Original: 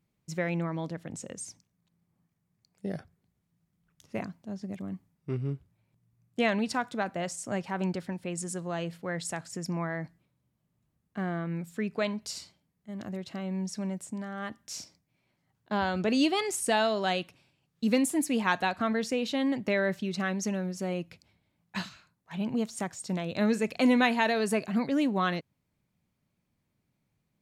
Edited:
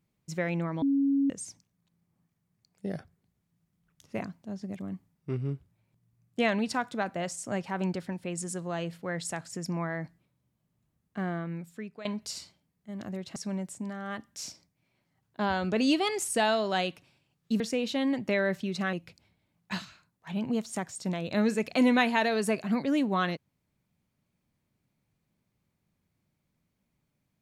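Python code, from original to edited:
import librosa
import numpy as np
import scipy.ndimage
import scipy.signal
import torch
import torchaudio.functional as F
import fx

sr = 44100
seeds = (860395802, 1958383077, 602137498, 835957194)

y = fx.edit(x, sr, fx.bleep(start_s=0.82, length_s=0.48, hz=277.0, db=-22.0),
    fx.fade_out_to(start_s=11.28, length_s=0.77, floor_db=-16.5),
    fx.cut(start_s=13.36, length_s=0.32),
    fx.cut(start_s=17.92, length_s=1.07),
    fx.cut(start_s=20.32, length_s=0.65), tone=tone)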